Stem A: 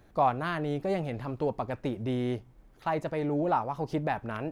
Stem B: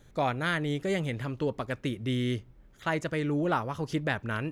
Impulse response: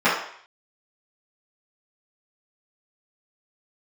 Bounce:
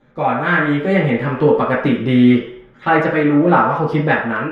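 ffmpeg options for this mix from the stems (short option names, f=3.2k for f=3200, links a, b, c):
-filter_complex "[0:a]agate=range=-33dB:threshold=-46dB:ratio=3:detection=peak,volume=-4.5dB[a];[1:a]lowpass=3k,flanger=delay=7.8:depth=2.2:regen=-46:speed=0.76:shape=triangular,volume=0dB,asplit=2[b][c];[c]volume=-8dB[d];[2:a]atrim=start_sample=2205[e];[d][e]afir=irnorm=-1:irlink=0[f];[a][b][f]amix=inputs=3:normalize=0,dynaudnorm=f=150:g=7:m=11.5dB"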